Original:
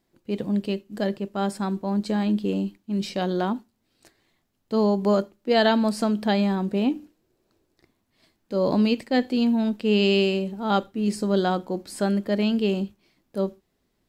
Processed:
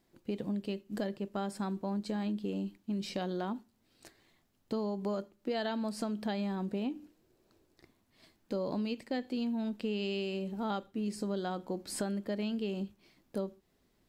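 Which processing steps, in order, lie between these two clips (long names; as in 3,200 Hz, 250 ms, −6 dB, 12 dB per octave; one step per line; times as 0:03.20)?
downward compressor 6 to 1, threshold −33 dBFS, peak gain reduction 16 dB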